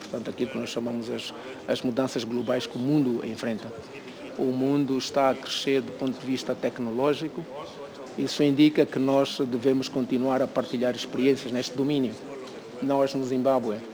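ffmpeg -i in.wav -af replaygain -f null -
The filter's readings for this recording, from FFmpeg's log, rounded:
track_gain = +6.0 dB
track_peak = 0.275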